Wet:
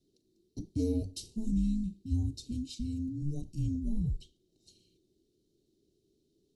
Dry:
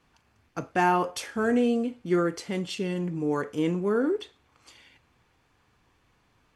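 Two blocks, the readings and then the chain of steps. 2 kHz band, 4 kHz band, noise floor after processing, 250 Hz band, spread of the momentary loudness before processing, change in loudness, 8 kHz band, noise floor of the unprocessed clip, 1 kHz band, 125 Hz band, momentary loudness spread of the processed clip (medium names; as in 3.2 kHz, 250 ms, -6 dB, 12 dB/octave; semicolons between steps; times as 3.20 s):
under -35 dB, -9.5 dB, -75 dBFS, -6.5 dB, 9 LU, -8.0 dB, -7.0 dB, -67 dBFS, under -40 dB, +1.0 dB, 7 LU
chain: Chebyshev band-stop 780–4300 Hz, order 3; frequency shift -440 Hz; trim -5 dB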